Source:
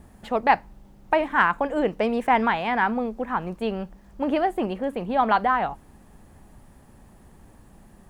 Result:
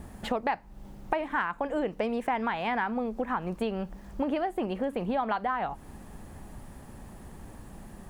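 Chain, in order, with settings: compressor 6:1, threshold -32 dBFS, peak gain reduction 18 dB; gain +5 dB

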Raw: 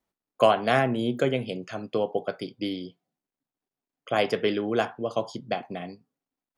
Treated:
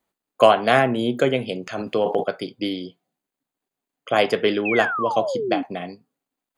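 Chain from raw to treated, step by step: low shelf 160 Hz -7 dB; notch 5500 Hz, Q 6.1; 1.66–2.24 transient shaper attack -1 dB, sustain +12 dB; 4.65–5.63 painted sound fall 260–2700 Hz -31 dBFS; gain +6 dB

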